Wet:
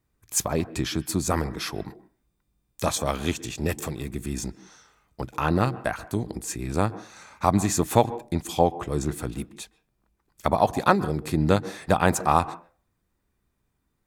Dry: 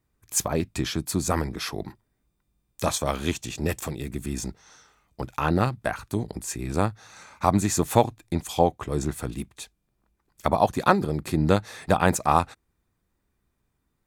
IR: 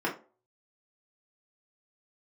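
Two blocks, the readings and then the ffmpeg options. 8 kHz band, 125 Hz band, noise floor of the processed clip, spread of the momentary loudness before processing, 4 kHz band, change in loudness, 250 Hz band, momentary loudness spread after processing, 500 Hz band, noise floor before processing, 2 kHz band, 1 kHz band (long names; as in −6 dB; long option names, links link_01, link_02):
0.0 dB, 0.0 dB, −75 dBFS, 12 LU, 0.0 dB, 0.0 dB, 0.0 dB, 12 LU, 0.0 dB, −76 dBFS, 0.0 dB, 0.0 dB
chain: -filter_complex "[0:a]asplit=2[link_01][link_02];[1:a]atrim=start_sample=2205,highshelf=frequency=8600:gain=-11.5,adelay=128[link_03];[link_02][link_03]afir=irnorm=-1:irlink=0,volume=-27dB[link_04];[link_01][link_04]amix=inputs=2:normalize=0"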